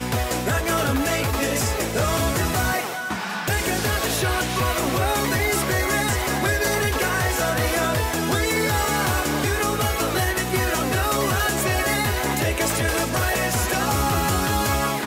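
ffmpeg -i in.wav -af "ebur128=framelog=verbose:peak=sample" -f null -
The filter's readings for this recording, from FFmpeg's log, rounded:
Integrated loudness:
  I:         -21.7 LUFS
  Threshold: -31.7 LUFS
Loudness range:
  LRA:         1.3 LU
  Threshold: -41.7 LUFS
  LRA low:   -22.6 LUFS
  LRA high:  -21.3 LUFS
Sample peak:
  Peak:      -11.0 dBFS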